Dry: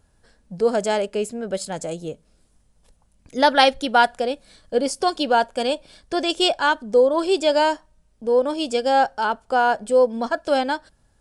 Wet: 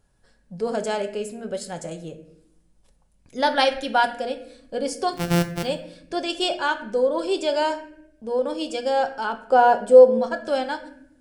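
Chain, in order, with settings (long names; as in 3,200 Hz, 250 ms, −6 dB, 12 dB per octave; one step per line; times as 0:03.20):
0:05.13–0:05.63: samples sorted by size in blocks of 256 samples
0:09.47–0:10.19: parametric band 440 Hz +9.5 dB 2 octaves
convolution reverb RT60 0.70 s, pre-delay 5 ms, DRR 6 dB
level −5 dB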